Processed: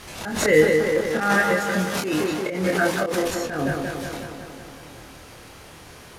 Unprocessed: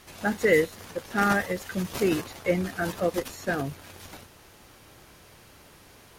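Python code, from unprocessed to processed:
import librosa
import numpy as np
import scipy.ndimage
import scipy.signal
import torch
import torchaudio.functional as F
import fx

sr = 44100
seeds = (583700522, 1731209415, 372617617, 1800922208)

y = fx.highpass(x, sr, hz=230.0, slope=6, at=(1.1, 3.24))
y = fx.echo_filtered(y, sr, ms=182, feedback_pct=68, hz=3500.0, wet_db=-8.0)
y = fx.auto_swell(y, sr, attack_ms=200.0)
y = scipy.signal.sosfilt(scipy.signal.butter(2, 12000.0, 'lowpass', fs=sr, output='sos'), y)
y = fx.doubler(y, sr, ms=26.0, db=-2.5)
y = fx.pre_swell(y, sr, db_per_s=64.0)
y = y * 10.0 ** (6.0 / 20.0)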